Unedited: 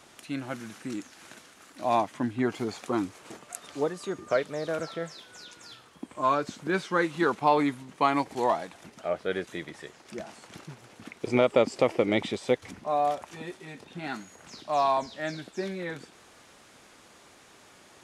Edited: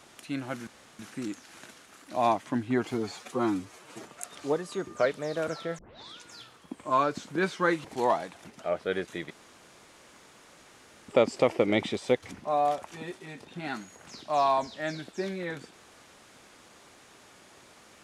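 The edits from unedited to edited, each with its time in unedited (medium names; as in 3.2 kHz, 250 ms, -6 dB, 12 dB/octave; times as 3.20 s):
0.67 s: insert room tone 0.32 s
2.62–3.35 s: stretch 1.5×
5.10 s: tape start 0.39 s
7.16–8.24 s: delete
9.70–11.48 s: room tone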